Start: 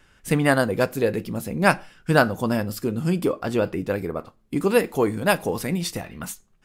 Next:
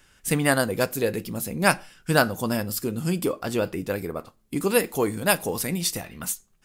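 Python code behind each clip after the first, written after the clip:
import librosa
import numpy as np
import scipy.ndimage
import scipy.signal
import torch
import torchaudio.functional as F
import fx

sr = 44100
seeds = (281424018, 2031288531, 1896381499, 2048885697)

y = fx.high_shelf(x, sr, hz=4200.0, db=11.5)
y = y * librosa.db_to_amplitude(-3.0)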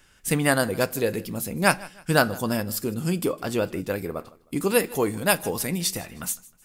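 y = fx.echo_feedback(x, sr, ms=156, feedback_pct=34, wet_db=-21.5)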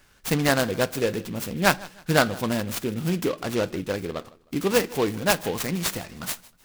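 y = fx.noise_mod_delay(x, sr, seeds[0], noise_hz=2400.0, depth_ms=0.053)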